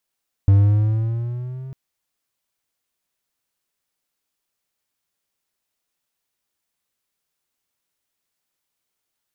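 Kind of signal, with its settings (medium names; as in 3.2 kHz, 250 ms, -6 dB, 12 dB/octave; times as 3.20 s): gliding synth tone triangle, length 1.25 s, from 97.6 Hz, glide +5.5 st, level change -22.5 dB, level -6.5 dB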